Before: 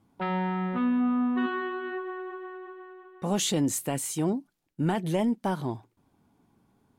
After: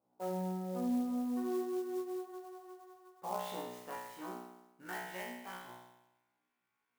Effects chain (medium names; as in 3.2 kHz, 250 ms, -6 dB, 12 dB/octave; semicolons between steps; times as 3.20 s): band-pass sweep 590 Hz -> 2.2 kHz, 2.08–5.52 s; feedback comb 61 Hz, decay 0.96 s, harmonics all, mix 100%; sampling jitter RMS 0.033 ms; trim +12.5 dB